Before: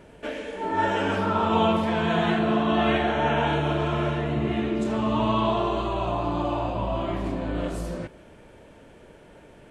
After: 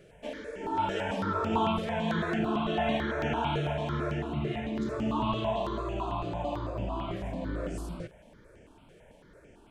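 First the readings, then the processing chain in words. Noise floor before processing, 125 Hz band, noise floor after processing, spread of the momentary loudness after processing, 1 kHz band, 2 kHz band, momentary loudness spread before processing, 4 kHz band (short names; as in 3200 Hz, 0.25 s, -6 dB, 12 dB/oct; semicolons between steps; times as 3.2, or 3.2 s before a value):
-50 dBFS, -5.5 dB, -57 dBFS, 8 LU, -6.5 dB, -7.0 dB, 9 LU, -6.5 dB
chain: step phaser 9 Hz 250–3900 Hz; gain -3.5 dB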